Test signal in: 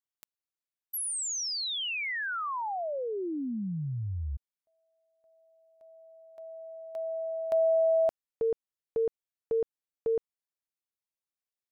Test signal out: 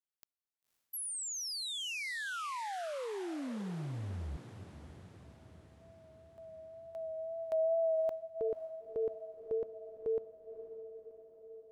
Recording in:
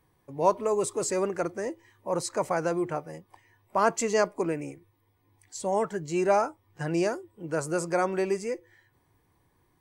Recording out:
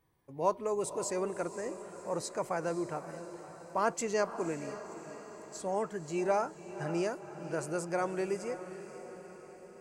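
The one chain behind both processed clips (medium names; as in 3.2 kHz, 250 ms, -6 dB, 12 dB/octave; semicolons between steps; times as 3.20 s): wow and flutter 28 cents; on a send: echo that smears into a reverb 536 ms, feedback 59%, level -12 dB; on the sum: trim -6.5 dB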